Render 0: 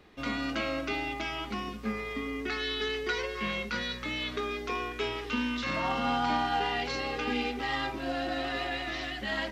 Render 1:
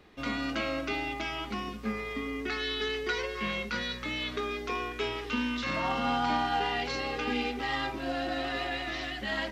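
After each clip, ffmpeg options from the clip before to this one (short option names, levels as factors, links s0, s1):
-af anull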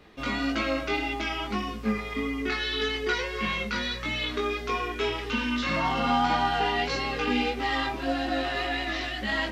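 -af "flanger=delay=17.5:depth=2.4:speed=1.7,volume=2.24"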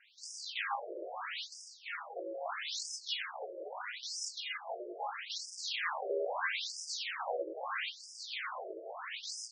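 -af "aeval=exprs='abs(val(0))':c=same,afftfilt=real='re*between(b*sr/1024,450*pow(7000/450,0.5+0.5*sin(2*PI*0.77*pts/sr))/1.41,450*pow(7000/450,0.5+0.5*sin(2*PI*0.77*pts/sr))*1.41)':imag='im*between(b*sr/1024,450*pow(7000/450,0.5+0.5*sin(2*PI*0.77*pts/sr))/1.41,450*pow(7000/450,0.5+0.5*sin(2*PI*0.77*pts/sr))*1.41)':win_size=1024:overlap=0.75"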